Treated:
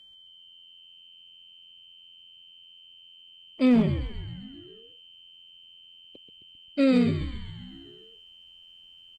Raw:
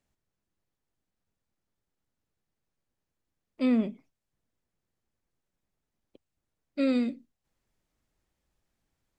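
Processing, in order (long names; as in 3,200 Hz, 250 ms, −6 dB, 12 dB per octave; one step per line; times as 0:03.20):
steady tone 3,100 Hz −55 dBFS
echo with shifted repeats 132 ms, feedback 63%, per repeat −86 Hz, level −9 dB
asymmetric clip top −21.5 dBFS, bottom −17 dBFS
level +5 dB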